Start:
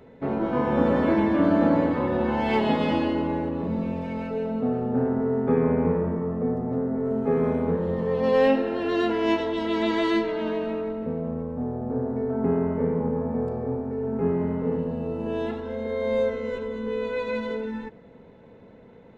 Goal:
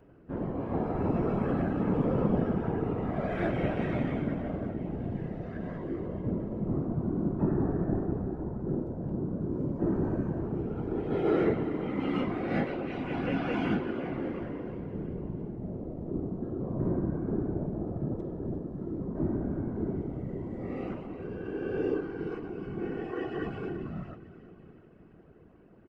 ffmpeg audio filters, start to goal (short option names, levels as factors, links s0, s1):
-af "aecho=1:1:260|520|780|1040|1300:0.178|0.0996|0.0558|0.0312|0.0175,asetrate=32667,aresample=44100,afftfilt=real='hypot(re,im)*cos(2*PI*random(0))':imag='hypot(re,im)*sin(2*PI*random(1))':win_size=512:overlap=0.75,volume=0.891"